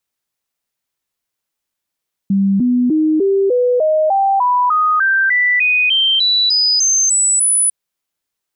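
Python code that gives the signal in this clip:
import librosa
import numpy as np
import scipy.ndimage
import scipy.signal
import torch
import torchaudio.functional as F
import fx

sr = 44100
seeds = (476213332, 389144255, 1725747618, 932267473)

y = fx.stepped_sweep(sr, from_hz=196.0, direction='up', per_octave=3, tones=18, dwell_s=0.3, gap_s=0.0, level_db=-10.5)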